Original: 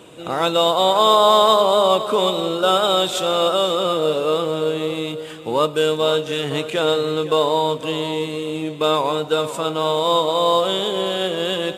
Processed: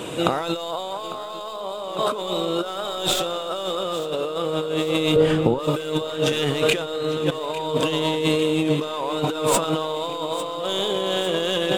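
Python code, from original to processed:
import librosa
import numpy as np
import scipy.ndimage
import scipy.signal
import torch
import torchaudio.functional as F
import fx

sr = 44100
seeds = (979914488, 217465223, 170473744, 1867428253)

p1 = fx.tracing_dist(x, sr, depth_ms=0.043)
p2 = fx.over_compress(p1, sr, threshold_db=-29.0, ratio=-1.0)
p3 = fx.tilt_eq(p2, sr, slope=-3.0, at=(5.16, 5.59))
p4 = p3 + fx.echo_thinned(p3, sr, ms=851, feedback_pct=69, hz=150.0, wet_db=-15.5, dry=0)
y = p4 * librosa.db_to_amplitude(3.5)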